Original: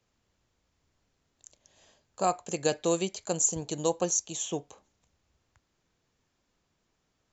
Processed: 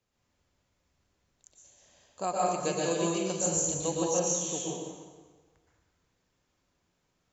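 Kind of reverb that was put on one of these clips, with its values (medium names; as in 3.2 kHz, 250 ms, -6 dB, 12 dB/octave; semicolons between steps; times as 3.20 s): plate-style reverb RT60 1.4 s, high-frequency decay 0.8×, pre-delay 105 ms, DRR -5.5 dB; trim -6 dB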